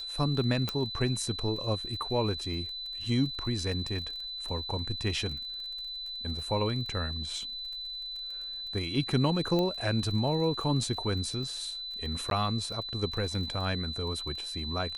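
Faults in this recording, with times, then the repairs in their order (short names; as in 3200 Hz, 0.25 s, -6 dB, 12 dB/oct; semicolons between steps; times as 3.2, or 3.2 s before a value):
crackle 31/s -39 dBFS
tone 4000 Hz -36 dBFS
0.69 pop
9.59 pop -18 dBFS
12.3–12.31 gap 12 ms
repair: de-click; notch 4000 Hz, Q 30; interpolate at 12.3, 12 ms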